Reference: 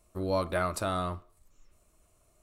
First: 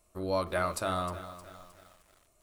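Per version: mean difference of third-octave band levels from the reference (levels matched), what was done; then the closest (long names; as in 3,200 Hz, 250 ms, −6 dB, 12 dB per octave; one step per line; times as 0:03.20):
3.5 dB: low-shelf EQ 380 Hz −3.5 dB
mains-hum notches 50/100/150/200/250/300/350/400/450 Hz
feedback echo at a low word length 310 ms, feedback 55%, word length 8 bits, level −13 dB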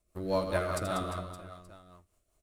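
5.5 dB: mu-law and A-law mismatch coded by A
on a send: reverse bouncing-ball delay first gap 80 ms, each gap 1.4×, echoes 5
on the sum: rotating-speaker cabinet horn 5 Hz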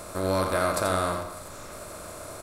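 8.0 dB: compressor on every frequency bin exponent 0.4
high-shelf EQ 7,900 Hz +5.5 dB
single-tap delay 85 ms −6 dB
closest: first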